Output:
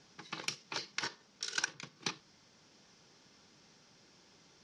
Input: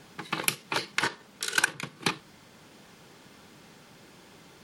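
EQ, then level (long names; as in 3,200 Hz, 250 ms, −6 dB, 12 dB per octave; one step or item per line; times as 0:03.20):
transistor ladder low-pass 6,200 Hz, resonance 65%
−1.5 dB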